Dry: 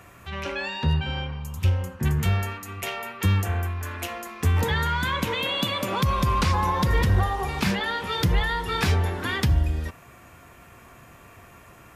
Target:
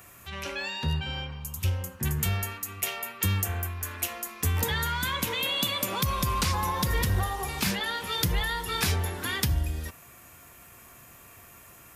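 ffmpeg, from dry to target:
-af "aemphasis=mode=production:type=75kf,volume=0.501"

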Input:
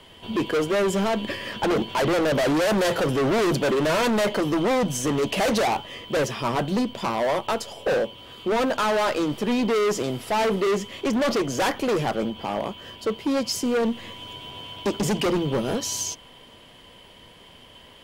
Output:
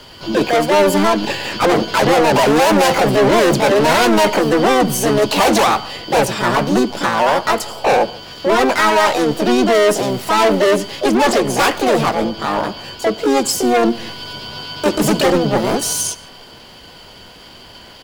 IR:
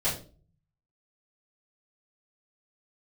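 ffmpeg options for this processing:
-filter_complex "[0:a]asplit=2[s0][s1];[s1]adelay=150,highpass=300,lowpass=3400,asoftclip=type=hard:threshold=0.0447,volume=0.141[s2];[s0][s2]amix=inputs=2:normalize=0,acontrast=59,asplit=2[s3][s4];[1:a]atrim=start_sample=2205,atrim=end_sample=4410,adelay=71[s5];[s4][s5]afir=irnorm=-1:irlink=0,volume=0.0266[s6];[s3][s6]amix=inputs=2:normalize=0,asplit=2[s7][s8];[s8]asetrate=66075,aresample=44100,atempo=0.66742,volume=1[s9];[s7][s9]amix=inputs=2:normalize=0"

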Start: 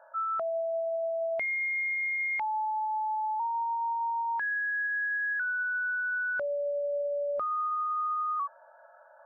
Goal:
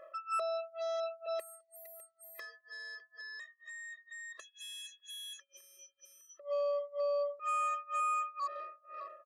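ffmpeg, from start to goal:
-filter_complex "[0:a]asplit=3[s0][s1][s2];[s0]afade=t=out:st=3.7:d=0.02[s3];[s1]acontrast=86,afade=t=in:st=3.7:d=0.02,afade=t=out:st=4.31:d=0.02[s4];[s2]afade=t=in:st=4.31:d=0.02[s5];[s3][s4][s5]amix=inputs=3:normalize=0,bandreject=f=1000:w=6.7,aecho=1:1:605|1210|1815:0.1|0.045|0.0202,tremolo=f=2.1:d=0.97,asettb=1/sr,asplit=3[s6][s7][s8];[s6]atrim=end=1.264[s9];[s7]atrim=start=1.26:end=1.86,asetpts=PTS-STARTPTS,afade=t=in:d=0.004:c=qsin,afade=t=out:st=0.596:d=0.004:c=qsin,acrossover=split=290[s10][s11];[s11]acompressor=threshold=0.0158:ratio=10[s12];[s10][s12]amix=inputs=2:normalize=0[s13];[s8]atrim=start=1.856[s14];[s9][s13]acrossfade=d=0.004:c1=hsin:c2=qsin[s15];[s15][s14]acrossfade=d=0.004:c1=qsin:c2=hsin,alimiter=level_in=3.55:limit=0.0631:level=0:latency=1:release=277,volume=0.282,aeval=exprs='0.0188*(cos(1*acos(clip(val(0)/0.0188,-1,1)))-cos(1*PI/2))+0.00422*(cos(2*acos(clip(val(0)/0.0188,-1,1)))-cos(2*PI/2))+0.00168*(cos(8*acos(clip(val(0)/0.0188,-1,1)))-cos(8*PI/2))':c=same,afftfilt=real='re*eq(mod(floor(b*sr/1024/340),2),1)':imag='im*eq(mod(floor(b*sr/1024/340),2),1)':win_size=1024:overlap=0.75,volume=2.11"

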